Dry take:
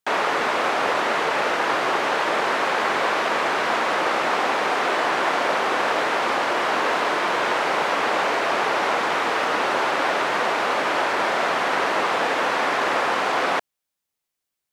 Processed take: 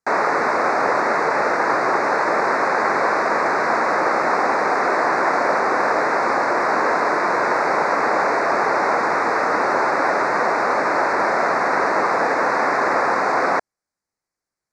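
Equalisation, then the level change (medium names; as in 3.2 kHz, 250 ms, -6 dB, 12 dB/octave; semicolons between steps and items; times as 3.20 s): Butterworth band-stop 3.1 kHz, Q 1.3; distance through air 73 m; +4.0 dB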